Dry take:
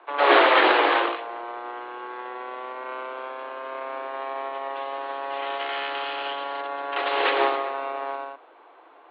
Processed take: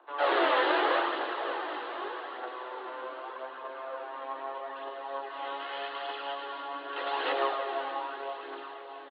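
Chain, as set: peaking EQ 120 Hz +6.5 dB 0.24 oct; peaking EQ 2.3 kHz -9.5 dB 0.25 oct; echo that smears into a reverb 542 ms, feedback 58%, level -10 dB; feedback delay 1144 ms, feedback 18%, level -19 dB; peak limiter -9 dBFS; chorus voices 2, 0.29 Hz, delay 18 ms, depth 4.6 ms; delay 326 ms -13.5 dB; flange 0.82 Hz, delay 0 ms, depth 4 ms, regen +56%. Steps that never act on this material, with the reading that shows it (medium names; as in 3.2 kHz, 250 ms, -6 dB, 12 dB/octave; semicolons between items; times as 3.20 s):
peaking EQ 120 Hz: input has nothing below 240 Hz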